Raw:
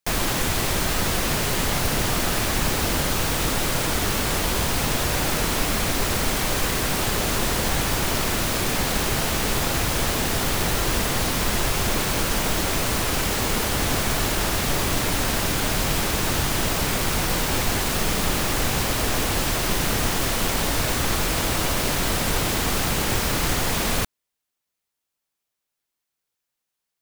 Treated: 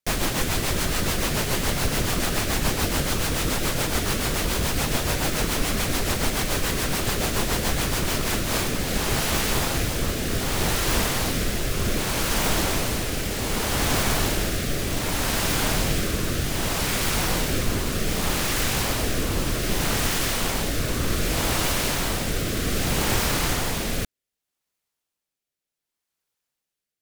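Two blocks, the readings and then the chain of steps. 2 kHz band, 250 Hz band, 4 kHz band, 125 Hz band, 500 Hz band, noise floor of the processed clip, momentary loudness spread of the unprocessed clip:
-2.0 dB, -0.5 dB, -1.5 dB, -0.5 dB, -1.0 dB, under -85 dBFS, 0 LU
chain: rotary cabinet horn 7 Hz, later 0.65 Hz, at 7.95 s; trim +1 dB

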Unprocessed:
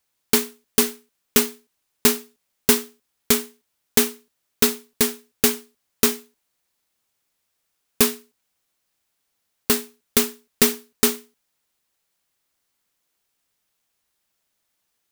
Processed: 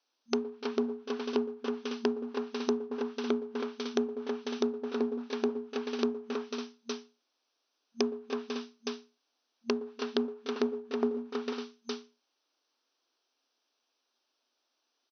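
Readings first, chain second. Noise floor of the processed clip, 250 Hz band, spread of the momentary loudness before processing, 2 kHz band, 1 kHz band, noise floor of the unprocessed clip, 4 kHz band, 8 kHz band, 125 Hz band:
-81 dBFS, -5.5 dB, 8 LU, -14.0 dB, -7.0 dB, -75 dBFS, -15.0 dB, -27.0 dB, under -15 dB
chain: multi-tap echo 114/294/321/494/552/863 ms -16.5/-19.5/-10/-15.5/-17.5/-14.5 dB; low-pass that closes with the level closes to 640 Hz, closed at -20 dBFS; peaking EQ 2 kHz -10.5 dB 0.44 oct; compression 2.5:1, threshold -26 dBFS, peak gain reduction 7.5 dB; FFT band-pass 230–6200 Hz

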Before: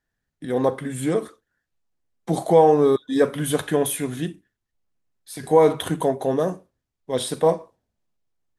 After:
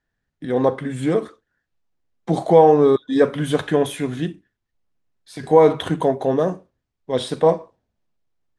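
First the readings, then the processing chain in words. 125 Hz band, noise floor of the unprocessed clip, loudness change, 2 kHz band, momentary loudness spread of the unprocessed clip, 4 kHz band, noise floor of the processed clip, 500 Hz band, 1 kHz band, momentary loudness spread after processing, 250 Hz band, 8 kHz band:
+3.0 dB, -82 dBFS, +2.5 dB, +2.5 dB, 15 LU, +1.0 dB, -79 dBFS, +3.0 dB, +2.5 dB, 15 LU, +3.0 dB, -8.0 dB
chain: distance through air 84 m; trim +3 dB

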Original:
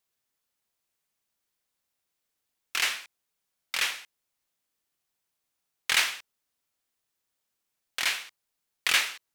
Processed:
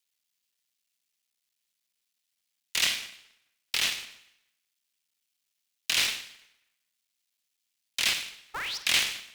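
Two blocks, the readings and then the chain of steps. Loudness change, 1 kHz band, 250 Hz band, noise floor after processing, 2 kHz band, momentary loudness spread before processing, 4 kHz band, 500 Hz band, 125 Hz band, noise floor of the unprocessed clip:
0.0 dB, -3.5 dB, +5.5 dB, -82 dBFS, -2.0 dB, 15 LU, +2.5 dB, 0.0 dB, no reading, -82 dBFS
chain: cycle switcher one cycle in 3, muted; inverse Chebyshev band-stop 220–590 Hz, stop band 80 dB; treble shelf 5.2 kHz -9.5 dB; peak limiter -20 dBFS, peak gain reduction 6 dB; tilt shelf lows -6.5 dB, about 1.4 kHz; painted sound rise, 8.53–8.78 s, 990–5900 Hz -38 dBFS; phase dispersion lows, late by 115 ms, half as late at 320 Hz; tape echo 213 ms, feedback 46%, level -16 dB, low-pass 1.2 kHz; Schroeder reverb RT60 0.71 s, combs from 31 ms, DRR 10.5 dB; polarity switched at an audio rate 220 Hz; trim +4 dB

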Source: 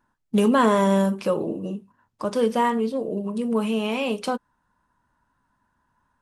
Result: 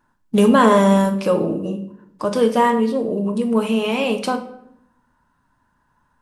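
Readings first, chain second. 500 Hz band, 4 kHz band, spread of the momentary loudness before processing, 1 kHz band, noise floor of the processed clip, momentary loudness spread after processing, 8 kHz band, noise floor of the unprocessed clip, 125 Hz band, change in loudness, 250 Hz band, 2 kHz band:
+5.5 dB, +5.0 dB, 13 LU, +5.5 dB, -65 dBFS, 14 LU, +5.0 dB, -73 dBFS, +5.5 dB, +5.0 dB, +5.5 dB, +5.5 dB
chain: simulated room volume 170 m³, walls mixed, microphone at 0.43 m; trim +4.5 dB

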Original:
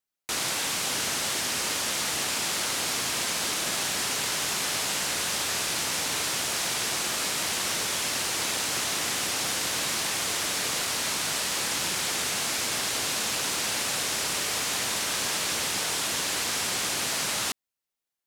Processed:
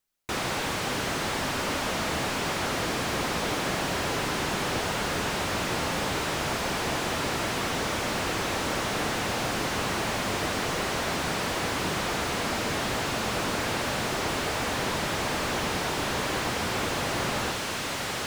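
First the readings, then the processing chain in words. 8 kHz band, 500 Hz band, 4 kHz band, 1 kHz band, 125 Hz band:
-8.5 dB, +7.0 dB, -4.0 dB, +4.5 dB, +10.0 dB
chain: bass shelf 61 Hz +11.5 dB; on a send: echo that smears into a reverb 878 ms, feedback 63%, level -6 dB; on the sum: slew-rate limiter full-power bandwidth 50 Hz; trim +5.5 dB

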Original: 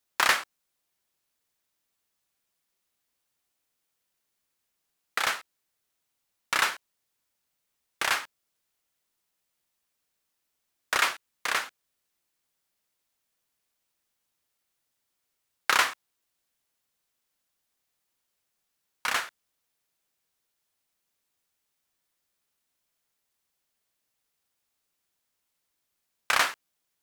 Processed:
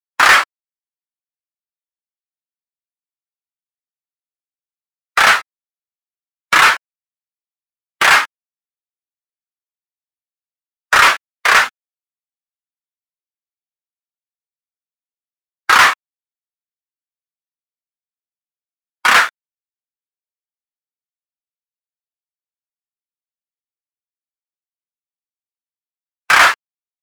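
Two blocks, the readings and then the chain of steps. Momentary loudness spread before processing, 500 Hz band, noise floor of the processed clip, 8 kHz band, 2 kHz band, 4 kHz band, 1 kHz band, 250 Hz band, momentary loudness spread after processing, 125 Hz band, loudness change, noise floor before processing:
17 LU, +13.5 dB, under -85 dBFS, +11.0 dB, +16.5 dB, +13.0 dB, +16.5 dB, +13.5 dB, 12 LU, no reading, +15.5 dB, -80 dBFS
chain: in parallel at -1.5 dB: compressor with a negative ratio -26 dBFS; on the sum: waveshaping leveller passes 5; spectral contrast expander 1.5:1; trim +2.5 dB

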